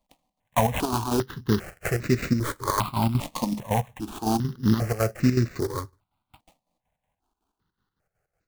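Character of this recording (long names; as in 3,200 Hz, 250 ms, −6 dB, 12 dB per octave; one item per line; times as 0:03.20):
a buzz of ramps at a fixed pitch in blocks of 8 samples
chopped level 5.4 Hz, depth 60%, duty 60%
aliases and images of a low sample rate 5,400 Hz, jitter 20%
notches that jump at a steady rate 2.5 Hz 400–3,200 Hz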